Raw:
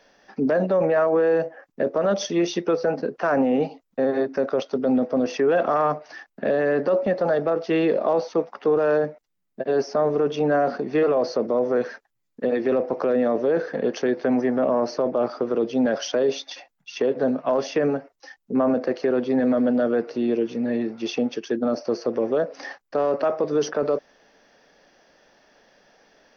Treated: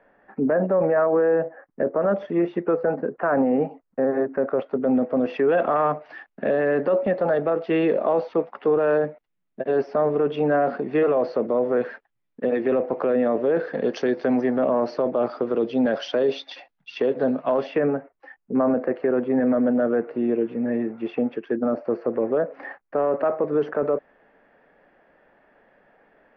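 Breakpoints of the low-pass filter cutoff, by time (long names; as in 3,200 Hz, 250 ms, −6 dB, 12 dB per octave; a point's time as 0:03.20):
low-pass filter 24 dB per octave
0:04.36 1,900 Hz
0:05.50 3,200 Hz
0:13.49 3,200 Hz
0:14.07 5,800 Hz
0:14.64 4,000 Hz
0:17.51 4,000 Hz
0:17.91 2,200 Hz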